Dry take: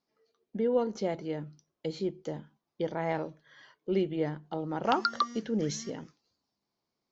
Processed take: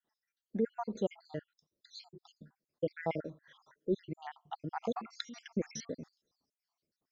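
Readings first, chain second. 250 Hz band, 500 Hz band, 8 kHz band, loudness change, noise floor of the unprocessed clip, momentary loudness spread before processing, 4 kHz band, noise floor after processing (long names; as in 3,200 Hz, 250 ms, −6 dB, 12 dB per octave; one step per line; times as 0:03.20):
−6.5 dB, −6.5 dB, can't be measured, −6.5 dB, below −85 dBFS, 13 LU, −8.0 dB, below −85 dBFS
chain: time-frequency cells dropped at random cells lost 71%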